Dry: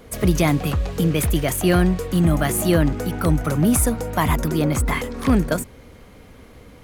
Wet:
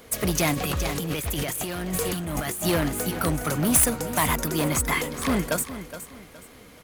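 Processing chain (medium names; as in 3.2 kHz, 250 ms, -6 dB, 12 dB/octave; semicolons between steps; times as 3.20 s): tracing distortion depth 0.025 ms; hard clipper -13.5 dBFS, distortion -15 dB; tilt EQ +2 dB/octave; feedback delay 418 ms, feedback 32%, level -12.5 dB; 0.54–2.64 s: compressor with a negative ratio -27 dBFS, ratio -1; trim -1.5 dB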